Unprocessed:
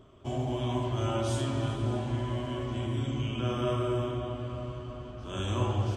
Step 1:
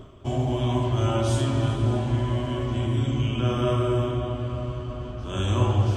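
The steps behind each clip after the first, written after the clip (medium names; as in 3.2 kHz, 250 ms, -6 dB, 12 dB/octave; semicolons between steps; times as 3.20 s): bass shelf 120 Hz +5.5 dB; reverse; upward compressor, threshold -34 dBFS; reverse; trim +5 dB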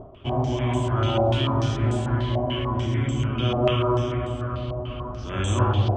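step-sequenced low-pass 6.8 Hz 740–7900 Hz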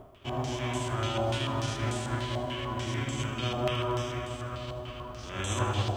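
formants flattened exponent 0.6; feedback echo behind a high-pass 78 ms, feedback 76%, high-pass 2.1 kHz, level -13 dB; trim -8.5 dB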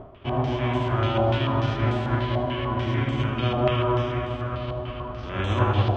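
distance through air 340 m; trim +8.5 dB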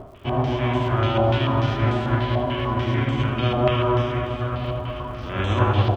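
crackle 210 per s -50 dBFS; delay 970 ms -16 dB; trim +2.5 dB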